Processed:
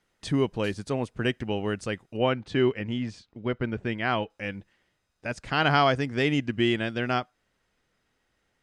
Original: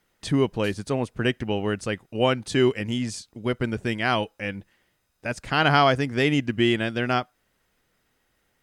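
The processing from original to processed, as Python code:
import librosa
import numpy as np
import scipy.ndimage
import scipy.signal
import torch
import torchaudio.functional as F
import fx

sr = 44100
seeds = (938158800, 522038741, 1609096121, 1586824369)

y = fx.lowpass(x, sr, hz=fx.steps((0.0, 9600.0), (2.17, 3100.0), (4.3, 7700.0)), slope=12)
y = y * librosa.db_to_amplitude(-3.0)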